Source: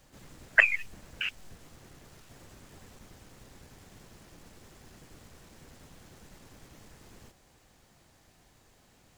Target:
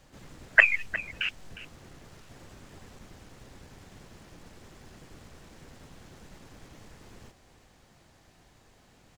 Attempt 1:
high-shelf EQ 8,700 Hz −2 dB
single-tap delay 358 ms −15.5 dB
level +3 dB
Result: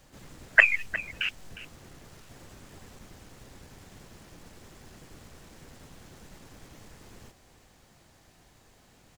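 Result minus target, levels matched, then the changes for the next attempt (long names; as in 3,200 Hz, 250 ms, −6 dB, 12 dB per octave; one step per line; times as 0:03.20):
8,000 Hz band +2.5 dB
change: high-shelf EQ 8,700 Hz −9.5 dB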